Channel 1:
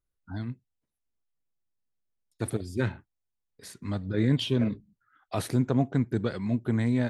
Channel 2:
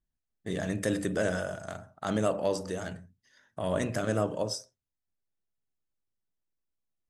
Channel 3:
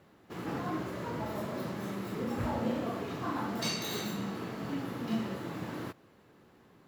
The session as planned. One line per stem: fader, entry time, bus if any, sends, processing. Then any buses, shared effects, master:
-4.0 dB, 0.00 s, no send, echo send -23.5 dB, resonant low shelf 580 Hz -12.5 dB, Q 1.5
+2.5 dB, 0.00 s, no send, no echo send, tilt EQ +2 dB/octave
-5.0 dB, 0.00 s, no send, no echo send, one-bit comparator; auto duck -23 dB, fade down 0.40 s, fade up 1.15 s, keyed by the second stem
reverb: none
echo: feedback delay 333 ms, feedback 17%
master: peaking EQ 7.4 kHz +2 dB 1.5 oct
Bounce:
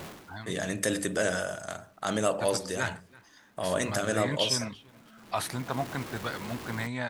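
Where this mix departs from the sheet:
stem 1 -4.0 dB -> +3.0 dB; master: missing peaking EQ 7.4 kHz +2 dB 1.5 oct

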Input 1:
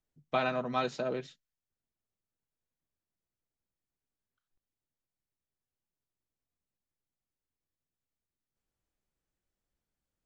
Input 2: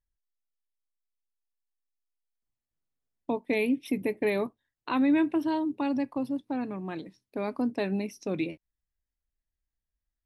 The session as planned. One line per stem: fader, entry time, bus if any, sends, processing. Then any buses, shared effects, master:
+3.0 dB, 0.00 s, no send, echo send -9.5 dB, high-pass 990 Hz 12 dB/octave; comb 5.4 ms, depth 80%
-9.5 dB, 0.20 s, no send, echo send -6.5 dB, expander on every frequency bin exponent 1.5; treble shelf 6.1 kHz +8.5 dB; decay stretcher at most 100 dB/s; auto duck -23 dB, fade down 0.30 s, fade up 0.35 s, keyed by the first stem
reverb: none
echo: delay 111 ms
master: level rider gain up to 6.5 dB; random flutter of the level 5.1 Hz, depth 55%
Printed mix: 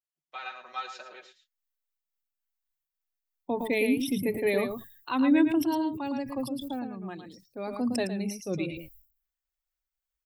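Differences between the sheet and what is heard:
stem 1 +3.0 dB -> -8.0 dB; stem 2 -9.5 dB -> -2.5 dB

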